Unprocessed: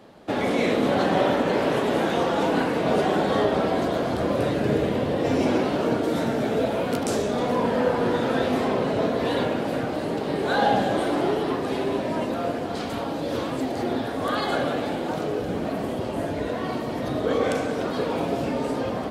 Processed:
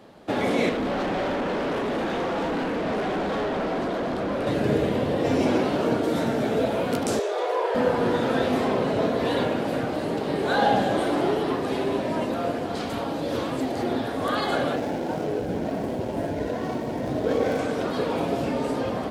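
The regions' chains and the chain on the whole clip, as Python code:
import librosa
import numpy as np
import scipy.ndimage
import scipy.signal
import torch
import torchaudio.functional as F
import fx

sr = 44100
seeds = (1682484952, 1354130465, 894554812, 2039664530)

y = fx.chain(x, sr, fx.low_shelf_res(hz=150.0, db=-6.5, q=1.5),
    fx.clip_hard(threshold_db=-24.0),
    fx.lowpass(hz=3800.0, slope=6), at=(0.69, 4.47))
y = fx.chain(y, sr, fx.brickwall_highpass(low_hz=330.0),
    fx.high_shelf(hz=5300.0, db=-7.0), at=(7.19, 7.75))
y = fx.chain(y, sr, fx.median_filter(points=15),
    fx.notch(hz=1200.0, q=5.4), at=(14.76, 17.59))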